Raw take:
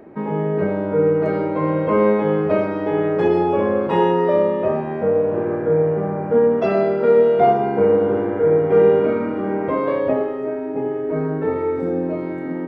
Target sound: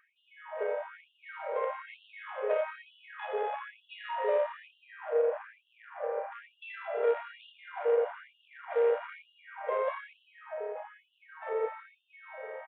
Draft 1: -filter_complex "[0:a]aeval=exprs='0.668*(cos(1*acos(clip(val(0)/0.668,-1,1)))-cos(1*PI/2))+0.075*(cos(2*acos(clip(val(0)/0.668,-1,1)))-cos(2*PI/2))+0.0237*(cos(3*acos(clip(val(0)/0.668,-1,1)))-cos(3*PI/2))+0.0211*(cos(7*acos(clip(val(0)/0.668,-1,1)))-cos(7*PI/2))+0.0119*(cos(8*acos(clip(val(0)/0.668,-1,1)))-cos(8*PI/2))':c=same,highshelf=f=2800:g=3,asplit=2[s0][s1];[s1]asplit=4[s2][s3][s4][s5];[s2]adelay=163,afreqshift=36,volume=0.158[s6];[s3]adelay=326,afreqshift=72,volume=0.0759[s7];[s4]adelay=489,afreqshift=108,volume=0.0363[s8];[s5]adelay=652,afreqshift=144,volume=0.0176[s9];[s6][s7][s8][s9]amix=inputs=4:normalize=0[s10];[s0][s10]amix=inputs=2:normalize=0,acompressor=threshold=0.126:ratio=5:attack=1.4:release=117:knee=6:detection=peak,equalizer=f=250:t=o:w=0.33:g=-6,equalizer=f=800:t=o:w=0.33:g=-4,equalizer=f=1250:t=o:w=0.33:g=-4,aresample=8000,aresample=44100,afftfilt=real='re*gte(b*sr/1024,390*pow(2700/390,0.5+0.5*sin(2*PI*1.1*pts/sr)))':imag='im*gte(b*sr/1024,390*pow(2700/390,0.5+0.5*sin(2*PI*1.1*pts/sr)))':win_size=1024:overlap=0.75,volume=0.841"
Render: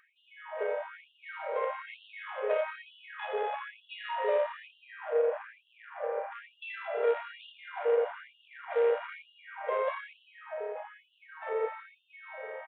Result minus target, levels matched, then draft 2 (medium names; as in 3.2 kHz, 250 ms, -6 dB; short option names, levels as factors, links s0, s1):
4 kHz band +4.0 dB
-filter_complex "[0:a]aeval=exprs='0.668*(cos(1*acos(clip(val(0)/0.668,-1,1)))-cos(1*PI/2))+0.075*(cos(2*acos(clip(val(0)/0.668,-1,1)))-cos(2*PI/2))+0.0237*(cos(3*acos(clip(val(0)/0.668,-1,1)))-cos(3*PI/2))+0.0211*(cos(7*acos(clip(val(0)/0.668,-1,1)))-cos(7*PI/2))+0.0119*(cos(8*acos(clip(val(0)/0.668,-1,1)))-cos(8*PI/2))':c=same,highshelf=f=2800:g=-5,asplit=2[s0][s1];[s1]asplit=4[s2][s3][s4][s5];[s2]adelay=163,afreqshift=36,volume=0.158[s6];[s3]adelay=326,afreqshift=72,volume=0.0759[s7];[s4]adelay=489,afreqshift=108,volume=0.0363[s8];[s5]adelay=652,afreqshift=144,volume=0.0176[s9];[s6][s7][s8][s9]amix=inputs=4:normalize=0[s10];[s0][s10]amix=inputs=2:normalize=0,acompressor=threshold=0.126:ratio=5:attack=1.4:release=117:knee=6:detection=peak,equalizer=f=250:t=o:w=0.33:g=-6,equalizer=f=800:t=o:w=0.33:g=-4,equalizer=f=1250:t=o:w=0.33:g=-4,aresample=8000,aresample=44100,afftfilt=real='re*gte(b*sr/1024,390*pow(2700/390,0.5+0.5*sin(2*PI*1.1*pts/sr)))':imag='im*gte(b*sr/1024,390*pow(2700/390,0.5+0.5*sin(2*PI*1.1*pts/sr)))':win_size=1024:overlap=0.75,volume=0.841"